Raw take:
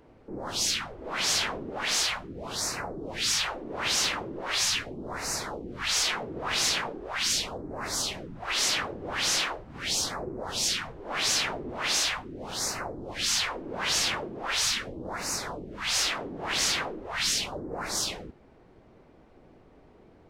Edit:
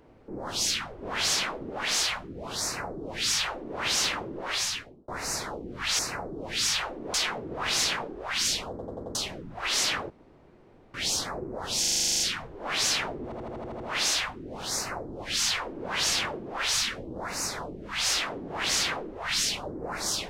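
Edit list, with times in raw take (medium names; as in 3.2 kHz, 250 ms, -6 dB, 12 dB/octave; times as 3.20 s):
1.02–1.61 s: reverse
2.64–3.79 s: copy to 5.99 s
4.46–5.08 s: fade out
7.55 s: stutter in place 0.09 s, 5 plays
8.95–9.79 s: room tone
10.65 s: stutter 0.04 s, 11 plays
11.69 s: stutter 0.08 s, 8 plays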